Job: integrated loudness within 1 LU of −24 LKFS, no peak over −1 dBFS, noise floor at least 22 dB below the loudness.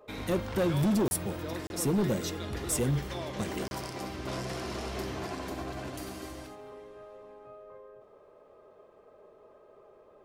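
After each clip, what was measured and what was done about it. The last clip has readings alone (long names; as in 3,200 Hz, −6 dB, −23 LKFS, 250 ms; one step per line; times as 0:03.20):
share of clipped samples 1.6%; peaks flattened at −23.0 dBFS; number of dropouts 3; longest dropout 31 ms; integrated loudness −32.5 LKFS; sample peak −23.0 dBFS; target loudness −24.0 LKFS
→ clipped peaks rebuilt −23 dBFS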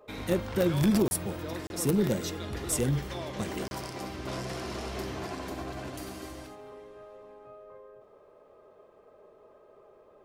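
share of clipped samples 0.0%; number of dropouts 3; longest dropout 31 ms
→ repair the gap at 0:01.08/0:01.67/0:03.68, 31 ms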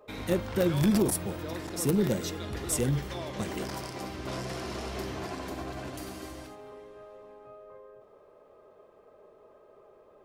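number of dropouts 0; integrated loudness −31.5 LKFS; sample peak −14.0 dBFS; target loudness −24.0 LKFS
→ level +7.5 dB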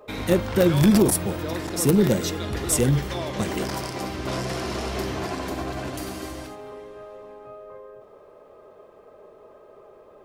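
integrated loudness −24.0 LKFS; sample peak −6.5 dBFS; background noise floor −50 dBFS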